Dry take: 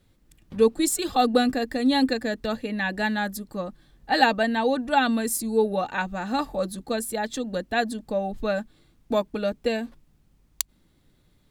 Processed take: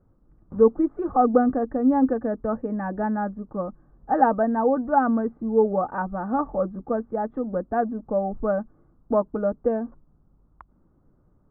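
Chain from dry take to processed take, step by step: elliptic low-pass 1.3 kHz, stop band 80 dB; trim +2.5 dB

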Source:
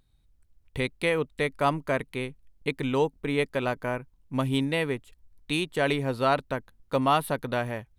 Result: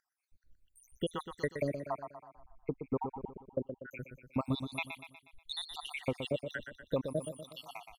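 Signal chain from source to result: random holes in the spectrogram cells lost 83%; 1.85–3.91 s: low-pass 1.1 kHz 24 dB/octave; compression 4:1, threshold -31 dBFS, peak gain reduction 9.5 dB; on a send: feedback delay 121 ms, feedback 50%, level -8 dB; on the sum: trim +1 dB

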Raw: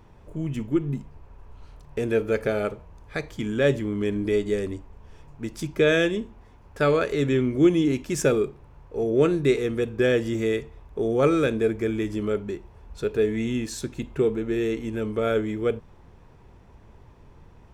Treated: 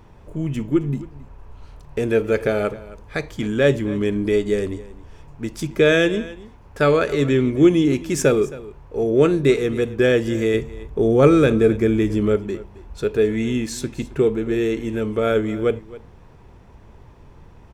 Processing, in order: 10.54–12.36 s: bass shelf 350 Hz +6 dB; delay 268 ms -18.5 dB; trim +4.5 dB

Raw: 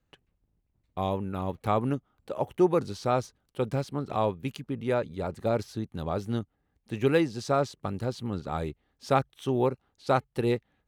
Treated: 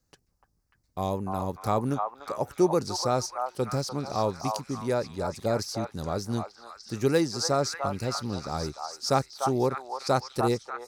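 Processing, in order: resonant high shelf 4 kHz +8.5 dB, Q 3; repeats whose band climbs or falls 296 ms, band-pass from 970 Hz, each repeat 0.7 oct, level -1 dB

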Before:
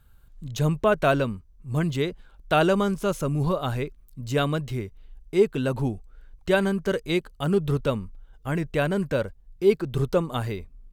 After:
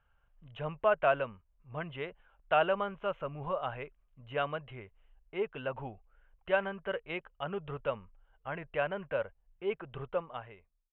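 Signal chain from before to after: fade out at the end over 0.99 s; elliptic low-pass 3 kHz, stop band 40 dB; resonant low shelf 440 Hz -10 dB, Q 1.5; trim -6.5 dB

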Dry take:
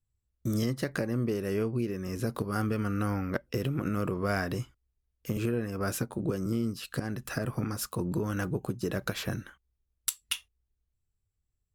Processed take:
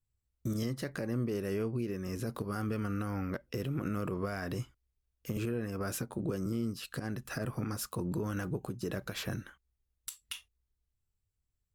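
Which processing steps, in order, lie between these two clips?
peak limiter -23 dBFS, peak gain reduction 10 dB; trim -2.5 dB

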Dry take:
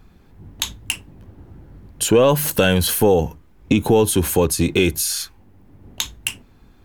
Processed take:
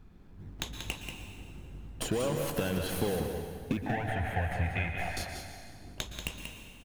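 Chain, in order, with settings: tracing distortion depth 0.03 ms; in parallel at -6.5 dB: decimation with a swept rate 32×, swing 60% 3.9 Hz; 3.77–5.17 s: on the sum: FFT filter 110 Hz 0 dB, 390 Hz -23 dB, 710 Hz +8 dB, 1.1 kHz -12 dB, 1.8 kHz +11 dB, 4.6 kHz -20 dB; compression 6:1, threshold -20 dBFS, peak gain reduction 12 dB; treble shelf 4.4 kHz -6 dB; on a send: delay 186 ms -7.5 dB; on the sum: plate-style reverb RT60 1.9 s, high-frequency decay 0.95×, pre-delay 105 ms, DRR 5.5 dB; trim -9 dB

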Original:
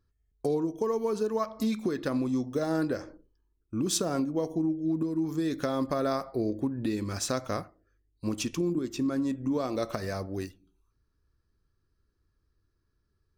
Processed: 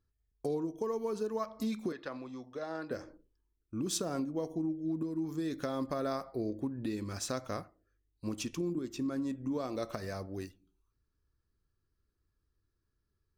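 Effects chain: 1.92–2.91 s: three-band isolator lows -12 dB, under 500 Hz, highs -21 dB, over 5 kHz; trim -6 dB

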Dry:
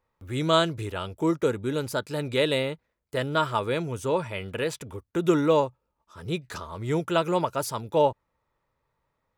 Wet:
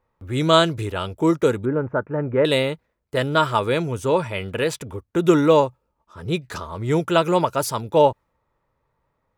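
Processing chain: 1.65–2.45 s: inverse Chebyshev low-pass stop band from 4.2 kHz, stop band 50 dB; tape noise reduction on one side only decoder only; trim +6 dB

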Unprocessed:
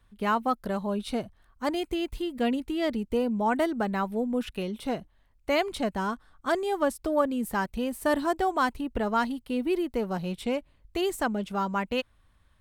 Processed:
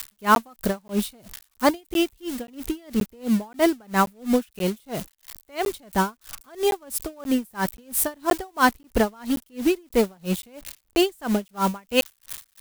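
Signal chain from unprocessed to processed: zero-crossing glitches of -29 dBFS; in parallel at -3 dB: companded quantiser 4-bit; on the sum: crackling interface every 0.53 s, samples 512, zero, from 0.35 s; logarithmic tremolo 3 Hz, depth 34 dB; trim +6 dB

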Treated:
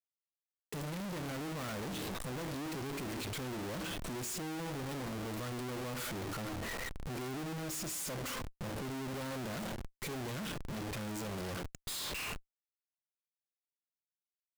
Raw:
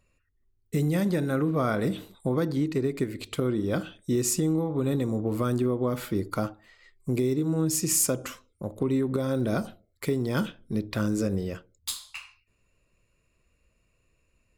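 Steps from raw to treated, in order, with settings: valve stage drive 38 dB, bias 0.5; Schmitt trigger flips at -60 dBFS; trim +2 dB

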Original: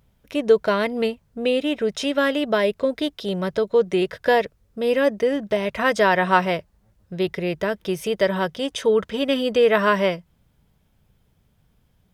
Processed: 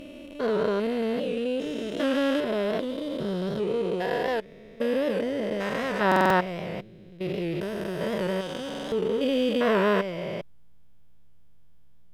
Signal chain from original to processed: spectrogram pixelated in time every 400 ms; in parallel at -3 dB: hysteresis with a dead band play -29.5 dBFS; on the sum: buffer glitch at 6.07/8.69 s, samples 2048, times 4; warped record 78 rpm, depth 100 cents; trim -4.5 dB

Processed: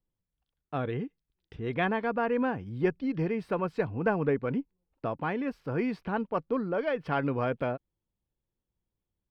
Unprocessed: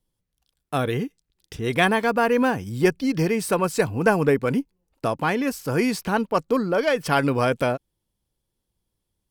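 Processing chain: distance through air 380 m; trim -7 dB

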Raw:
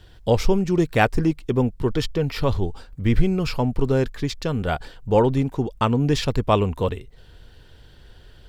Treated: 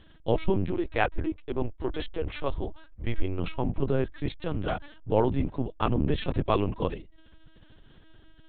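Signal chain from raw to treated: octave divider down 1 oct, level -4 dB; LPC vocoder at 8 kHz pitch kept; 0.71–3.39 s: peaking EQ 170 Hz -12 dB 1.1 oct; trim -6.5 dB

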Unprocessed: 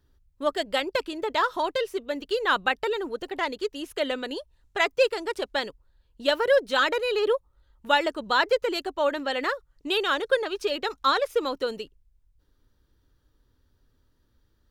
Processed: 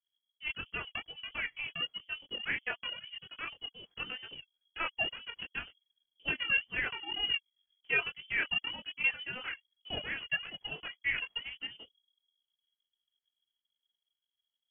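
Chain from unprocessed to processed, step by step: chorus voices 6, 0.46 Hz, delay 21 ms, depth 3.5 ms; power-law waveshaper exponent 1.4; in parallel at -9 dB: saturation -20 dBFS, distortion -15 dB; on the sum: frequency inversion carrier 3.3 kHz; trim -6.5 dB

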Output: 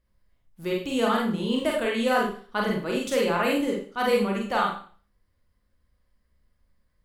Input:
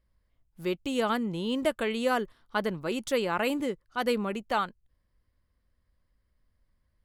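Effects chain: Schroeder reverb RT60 0.43 s, combs from 31 ms, DRR -2 dB

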